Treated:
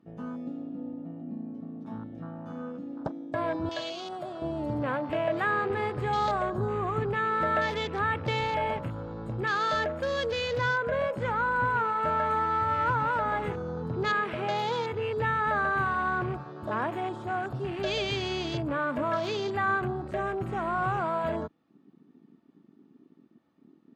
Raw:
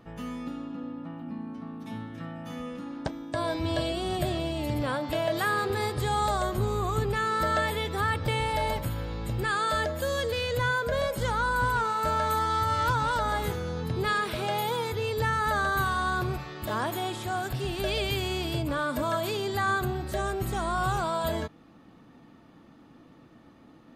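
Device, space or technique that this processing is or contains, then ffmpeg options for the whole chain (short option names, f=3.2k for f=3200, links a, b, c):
over-cleaned archive recording: -filter_complex "[0:a]highpass=120,lowpass=7.3k,afwtdn=0.0112,asettb=1/sr,asplit=3[a][b][c];[a]atrim=end=3.694[d];[b]atrim=start=3.69:end=4.42,asetpts=PTS-STARTPTS,afade=t=in:d=0.004:c=qsin,afade=t=out:st=0.726:d=0.004:c=qsin,highpass=f=970:p=1[e];[c]atrim=start=4.416[f];[d][e]acrossfade=d=0.004:c1=hsin:c2=qsin[g];[g][f]acrossfade=d=0.004:c1=qsin:c2=hsin"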